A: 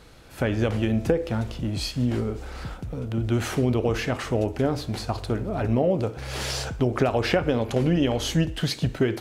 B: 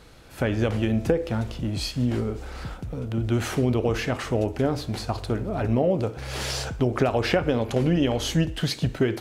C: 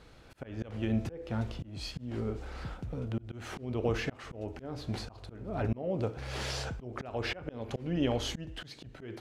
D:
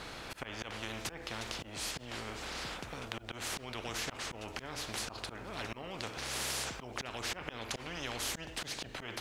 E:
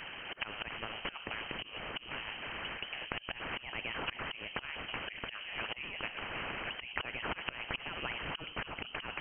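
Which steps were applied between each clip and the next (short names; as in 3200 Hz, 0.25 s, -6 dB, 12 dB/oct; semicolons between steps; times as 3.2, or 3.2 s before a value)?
nothing audible
high shelf 8500 Hz -12 dB; auto swell 0.311 s; gain -5.5 dB
spectral compressor 4:1; gain +1 dB
inverted band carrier 3100 Hz; harmonic-percussive split harmonic -12 dB; gain +5 dB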